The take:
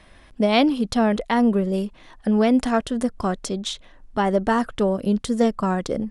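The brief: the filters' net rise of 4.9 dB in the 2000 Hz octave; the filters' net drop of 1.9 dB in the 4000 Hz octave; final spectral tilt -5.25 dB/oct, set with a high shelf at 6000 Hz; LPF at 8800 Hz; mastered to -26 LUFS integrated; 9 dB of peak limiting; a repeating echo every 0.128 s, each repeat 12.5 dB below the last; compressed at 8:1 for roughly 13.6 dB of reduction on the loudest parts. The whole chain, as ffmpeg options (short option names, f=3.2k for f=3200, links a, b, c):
-af "lowpass=8.8k,equalizer=f=2k:t=o:g=7,equalizer=f=4k:t=o:g=-7.5,highshelf=f=6k:g=7,acompressor=threshold=-28dB:ratio=8,alimiter=limit=-24dB:level=0:latency=1,aecho=1:1:128|256|384:0.237|0.0569|0.0137,volume=8dB"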